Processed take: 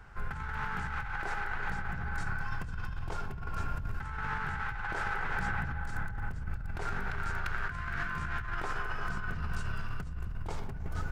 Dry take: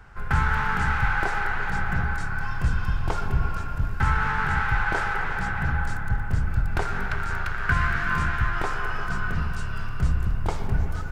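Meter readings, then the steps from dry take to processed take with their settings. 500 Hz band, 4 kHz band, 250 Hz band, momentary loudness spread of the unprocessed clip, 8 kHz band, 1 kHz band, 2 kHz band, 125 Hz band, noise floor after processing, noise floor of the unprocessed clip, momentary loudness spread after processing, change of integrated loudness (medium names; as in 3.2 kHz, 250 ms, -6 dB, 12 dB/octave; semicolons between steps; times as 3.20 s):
-9.5 dB, -9.0 dB, -10.5 dB, 6 LU, no reading, -10.0 dB, -9.5 dB, -12.0 dB, -39 dBFS, -29 dBFS, 6 LU, -10.5 dB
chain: compressor with a negative ratio -27 dBFS, ratio -1; trim -7 dB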